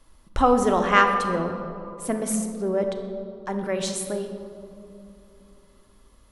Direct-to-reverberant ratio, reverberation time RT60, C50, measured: 4.5 dB, 2.7 s, 7.0 dB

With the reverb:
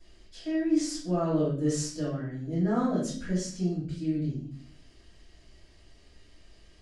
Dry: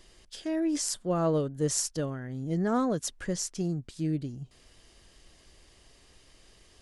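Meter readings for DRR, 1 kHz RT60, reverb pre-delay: -11.5 dB, 0.45 s, 3 ms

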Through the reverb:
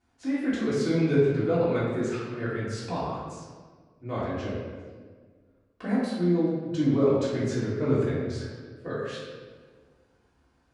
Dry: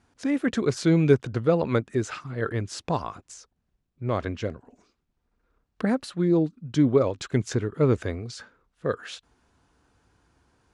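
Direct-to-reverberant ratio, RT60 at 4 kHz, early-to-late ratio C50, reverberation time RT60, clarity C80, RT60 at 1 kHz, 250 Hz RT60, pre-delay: -10.5 dB, 1.1 s, -1.5 dB, 1.6 s, 1.5 dB, 1.4 s, 2.0 s, 3 ms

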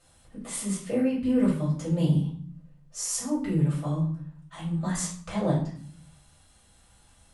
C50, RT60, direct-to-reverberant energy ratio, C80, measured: 5.5 dB, 0.50 s, -8.5 dB, 10.0 dB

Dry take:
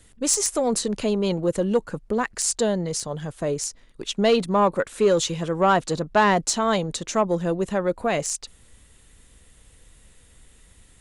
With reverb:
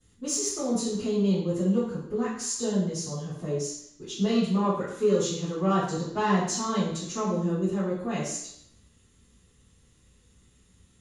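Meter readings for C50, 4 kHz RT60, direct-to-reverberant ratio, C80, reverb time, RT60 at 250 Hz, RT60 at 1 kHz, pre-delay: 1.0 dB, 0.70 s, -14.5 dB, 5.5 dB, 0.70 s, 0.70 s, 0.75 s, 3 ms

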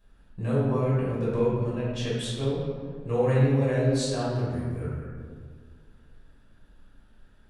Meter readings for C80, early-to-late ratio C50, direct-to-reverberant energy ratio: 1.0 dB, -1.5 dB, -9.0 dB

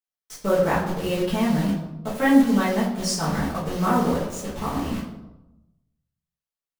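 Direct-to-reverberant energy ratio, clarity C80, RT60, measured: -8.5 dB, 7.0 dB, 1.0 s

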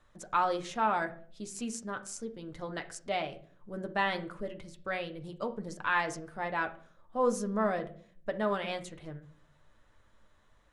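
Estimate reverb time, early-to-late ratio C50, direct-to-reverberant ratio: 0.50 s, 14.5 dB, 4.0 dB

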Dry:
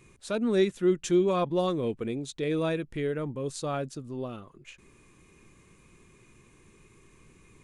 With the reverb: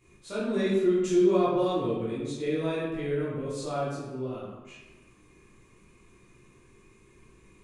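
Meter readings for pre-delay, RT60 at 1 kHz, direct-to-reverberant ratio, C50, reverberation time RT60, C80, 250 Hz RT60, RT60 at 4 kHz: 11 ms, 1.2 s, -10.0 dB, -0.5 dB, 1.1 s, 2.5 dB, 1.2 s, 0.75 s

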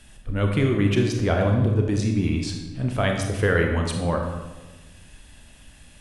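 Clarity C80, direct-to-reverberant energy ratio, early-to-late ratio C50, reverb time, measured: 6.5 dB, 2.0 dB, 4.5 dB, 1.2 s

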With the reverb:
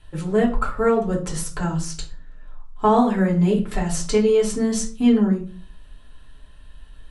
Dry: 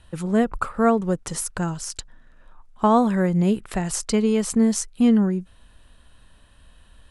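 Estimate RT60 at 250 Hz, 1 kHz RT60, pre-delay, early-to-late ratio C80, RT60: 0.50 s, 0.35 s, 3 ms, 15.5 dB, 0.40 s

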